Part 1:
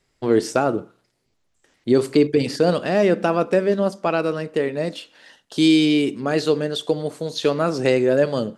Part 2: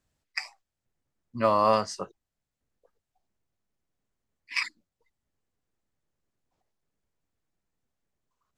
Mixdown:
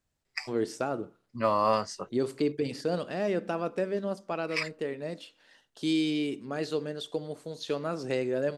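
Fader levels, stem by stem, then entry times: -12.0, -3.0 dB; 0.25, 0.00 s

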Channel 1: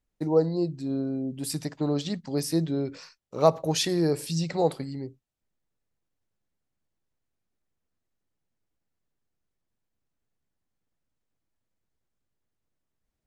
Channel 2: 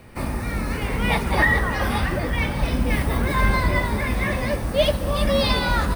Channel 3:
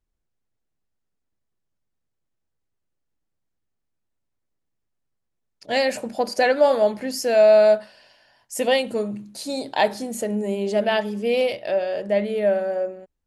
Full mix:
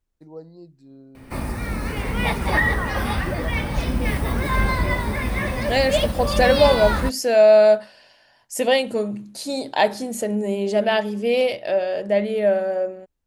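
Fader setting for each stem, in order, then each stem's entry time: -17.0, -1.0, +1.5 dB; 0.00, 1.15, 0.00 s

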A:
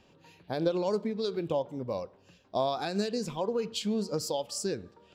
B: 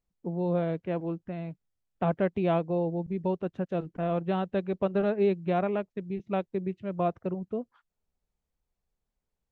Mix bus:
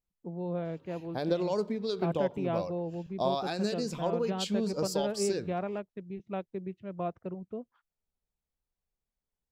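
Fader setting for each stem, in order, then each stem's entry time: -1.0, -6.5 dB; 0.65, 0.00 s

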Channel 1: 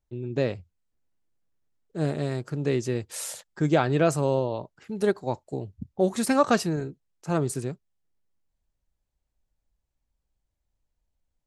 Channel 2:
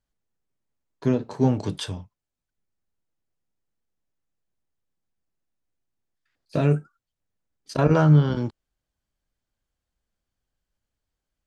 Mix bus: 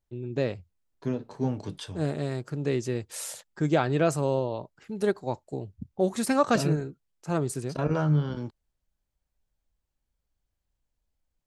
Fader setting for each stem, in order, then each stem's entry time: -2.0, -8.0 dB; 0.00, 0.00 s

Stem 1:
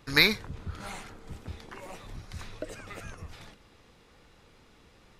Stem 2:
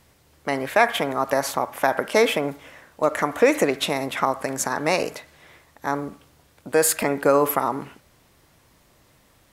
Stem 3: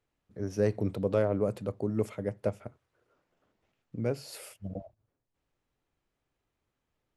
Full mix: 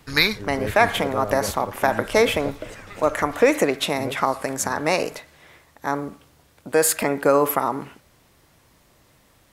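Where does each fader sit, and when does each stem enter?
+2.5, +0.5, -2.0 dB; 0.00, 0.00, 0.00 s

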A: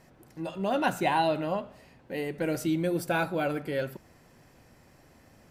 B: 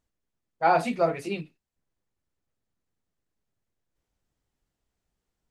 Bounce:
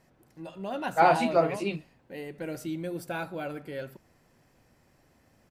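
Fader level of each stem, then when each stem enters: -6.5, +0.5 dB; 0.00, 0.35 s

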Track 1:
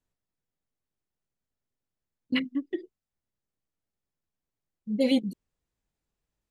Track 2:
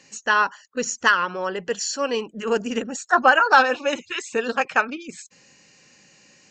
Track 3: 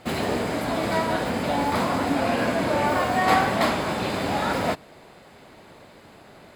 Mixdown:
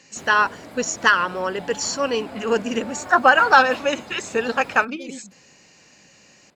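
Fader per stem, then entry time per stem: -14.5, +1.5, -14.0 dB; 0.00, 0.00, 0.10 s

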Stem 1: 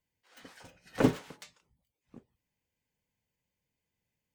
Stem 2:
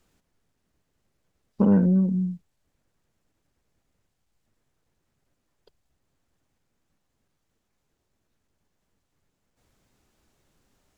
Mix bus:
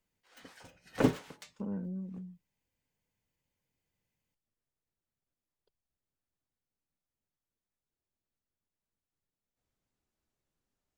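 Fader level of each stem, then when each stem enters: -1.5, -19.0 dB; 0.00, 0.00 s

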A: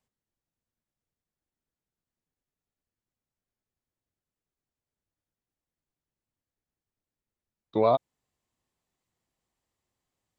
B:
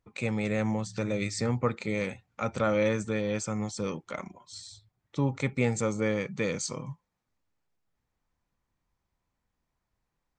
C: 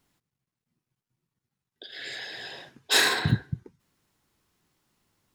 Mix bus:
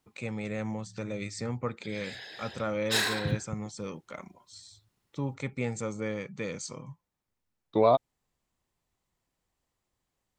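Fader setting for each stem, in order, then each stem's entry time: +0.5, -5.5, -6.5 dB; 0.00, 0.00, 0.00 s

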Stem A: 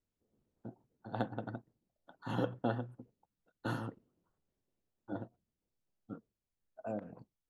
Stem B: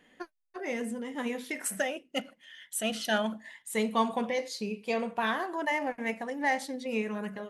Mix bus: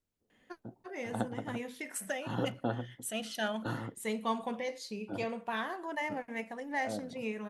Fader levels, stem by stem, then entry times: +0.5, -6.0 dB; 0.00, 0.30 s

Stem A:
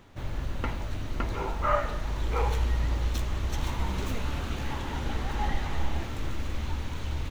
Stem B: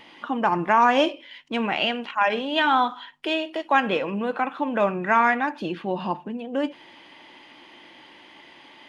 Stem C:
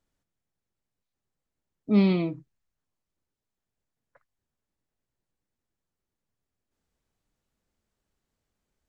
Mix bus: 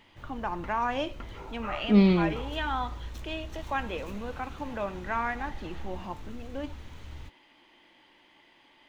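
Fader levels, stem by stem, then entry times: -11.5, -11.5, +1.0 dB; 0.00, 0.00, 0.00 s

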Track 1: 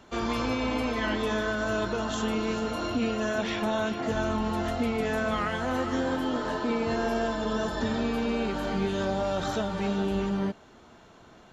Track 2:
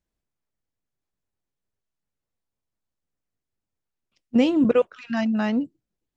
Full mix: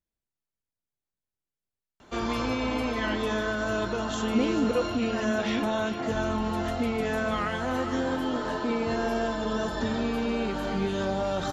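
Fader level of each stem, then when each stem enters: 0.0, -8.0 dB; 2.00, 0.00 s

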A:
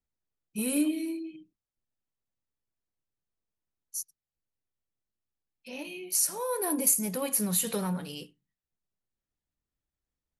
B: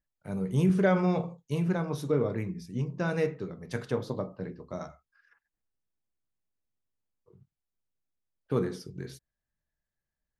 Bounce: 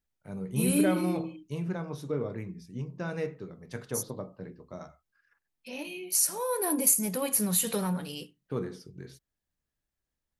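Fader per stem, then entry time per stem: +1.0, -5.0 dB; 0.00, 0.00 s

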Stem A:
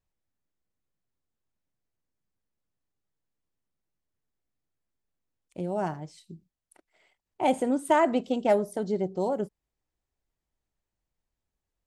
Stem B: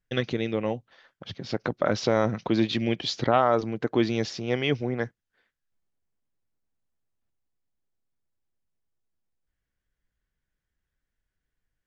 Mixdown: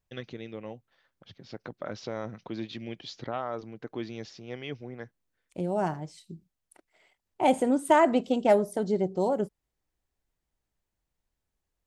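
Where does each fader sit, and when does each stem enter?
+1.5, -12.5 dB; 0.00, 0.00 s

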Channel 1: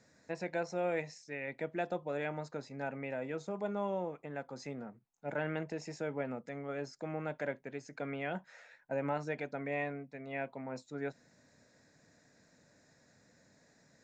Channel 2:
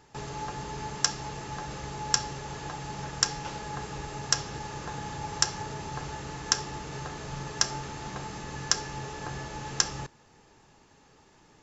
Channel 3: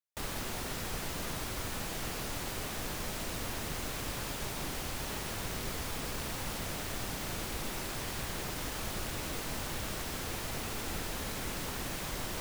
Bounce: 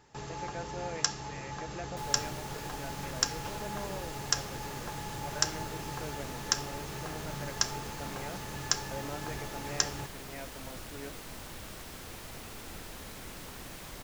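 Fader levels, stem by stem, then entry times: -6.5, -3.5, -7.0 dB; 0.00, 0.00, 1.80 s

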